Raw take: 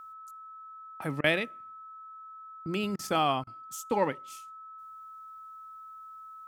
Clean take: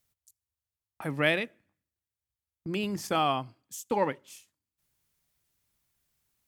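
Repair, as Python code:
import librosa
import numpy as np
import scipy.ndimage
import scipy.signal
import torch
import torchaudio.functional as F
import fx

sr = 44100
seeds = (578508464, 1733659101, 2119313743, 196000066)

y = fx.notch(x, sr, hz=1300.0, q=30.0)
y = fx.fix_interpolate(y, sr, at_s=(1.21, 2.96, 3.44), length_ms=29.0)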